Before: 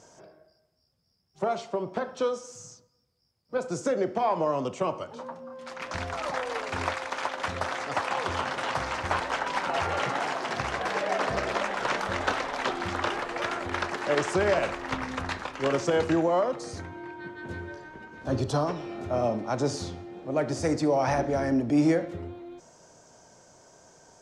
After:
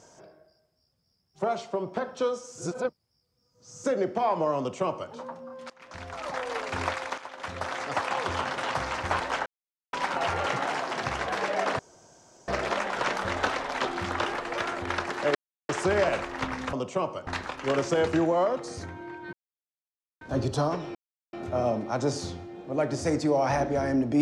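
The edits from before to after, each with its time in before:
2.58–3.84 s: reverse
4.58–5.12 s: copy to 15.23 s
5.70–6.55 s: fade in, from -21.5 dB
7.18–7.83 s: fade in, from -14.5 dB
9.46 s: insert silence 0.47 s
11.32 s: insert room tone 0.69 s
14.19 s: insert silence 0.34 s
17.29–18.17 s: mute
18.91 s: insert silence 0.38 s

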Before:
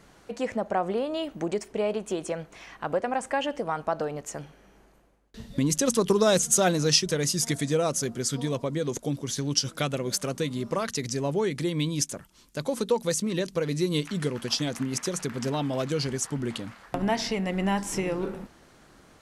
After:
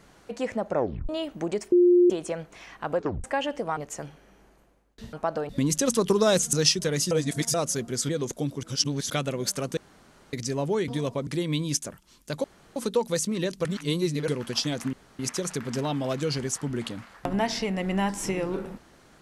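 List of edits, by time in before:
0.69 s: tape stop 0.40 s
1.72–2.10 s: bleep 354 Hz -14 dBFS
2.96 s: tape stop 0.28 s
3.77–4.13 s: move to 5.49 s
6.53–6.80 s: delete
7.38–7.81 s: reverse
8.36–8.75 s: move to 11.54 s
9.29–9.76 s: reverse
10.43–10.99 s: room tone
12.71 s: insert room tone 0.32 s
13.60–14.23 s: reverse
14.88 s: insert room tone 0.26 s

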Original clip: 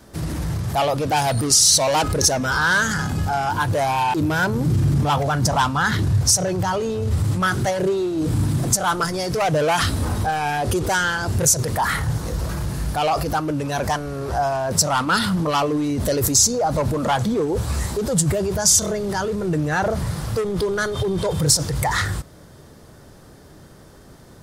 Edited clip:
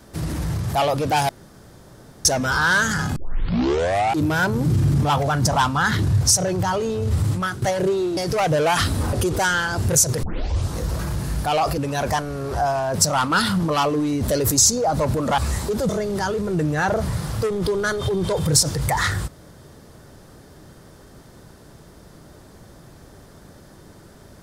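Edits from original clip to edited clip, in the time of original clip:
1.29–2.25 s: room tone
3.16 s: tape start 1.05 s
7.28–7.62 s: fade out, to -13.5 dB
8.17–9.19 s: delete
10.15–10.63 s: delete
11.73 s: tape start 0.52 s
13.28–13.55 s: delete
17.15–17.66 s: delete
18.17–18.83 s: delete

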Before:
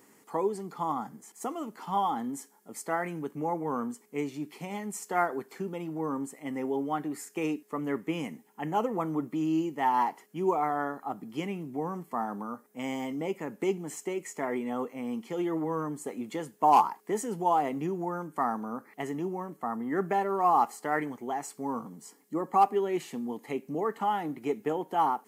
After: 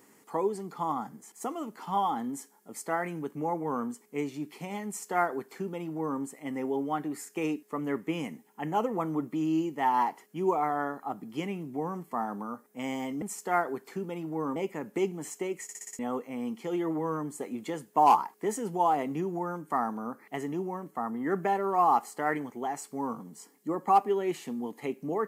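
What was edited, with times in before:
4.86–6.20 s: copy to 13.22 s
14.29 s: stutter in place 0.06 s, 6 plays

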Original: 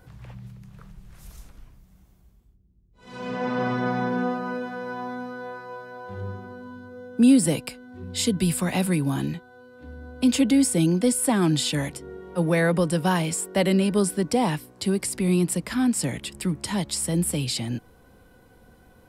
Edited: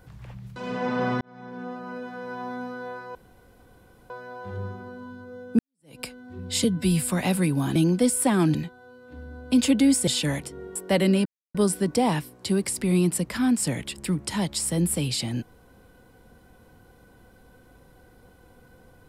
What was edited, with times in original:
0.56–3.15 s: delete
3.80–5.24 s: fade in
5.74 s: insert room tone 0.95 s
7.23–7.64 s: fade in exponential
8.28–8.57 s: stretch 1.5×
10.78–11.57 s: move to 9.25 s
12.25–13.41 s: delete
13.91 s: insert silence 0.29 s

